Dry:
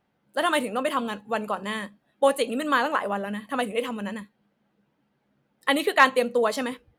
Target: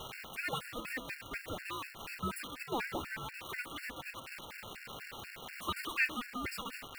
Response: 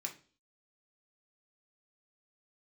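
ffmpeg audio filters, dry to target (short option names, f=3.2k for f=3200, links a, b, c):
-filter_complex "[0:a]aeval=exprs='val(0)+0.5*0.0944*sgn(val(0))':c=same,aderivative,acompressor=mode=upward:threshold=-43dB:ratio=2.5,acrossover=split=220 2500:gain=0.158 1 0.0891[a][b][c];[a][b][c]amix=inputs=3:normalize=0,aeval=exprs='val(0)*sin(2*PI*740*n/s)':c=same,asplit=2[d][e];[1:a]atrim=start_sample=2205,asetrate=70560,aresample=44100[f];[e][f]afir=irnorm=-1:irlink=0,volume=-17.5dB[g];[d][g]amix=inputs=2:normalize=0,afftfilt=real='re*gt(sin(2*PI*4.1*pts/sr)*(1-2*mod(floor(b*sr/1024/1400),2)),0)':imag='im*gt(sin(2*PI*4.1*pts/sr)*(1-2*mod(floor(b*sr/1024/1400),2)),0)':win_size=1024:overlap=0.75,volume=5.5dB"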